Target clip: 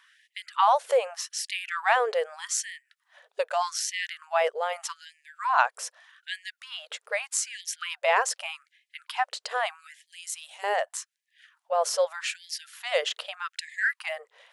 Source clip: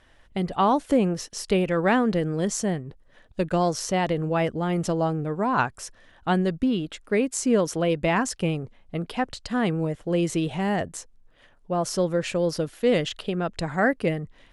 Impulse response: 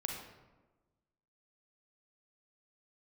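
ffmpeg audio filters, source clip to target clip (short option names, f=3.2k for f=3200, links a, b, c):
-filter_complex "[0:a]asettb=1/sr,asplit=3[a][b][c];[a]atrim=end=10.064[d];[b]atrim=start=10.06:end=10.64,asetpts=PTS-STARTPTS,afade=t=in:d=0.004:c=qsin,afade=t=out:st=0.576:d=0.004:c=qsin,aderivative[e];[c]atrim=start=10.636[f];[d][e]acrossfade=d=0.004:c1=hsin:c2=qsin[g];[g][f]acrossfade=d=0.004:c1=qsin:c2=hsin,afftfilt=real='re*gte(b*sr/1024,410*pow(1700/410,0.5+0.5*sin(2*PI*0.82*pts/sr)))':imag='im*gte(b*sr/1024,410*pow(1700/410,0.5+0.5*sin(2*PI*0.82*pts/sr)))':win_size=1024:overlap=0.75,volume=2dB"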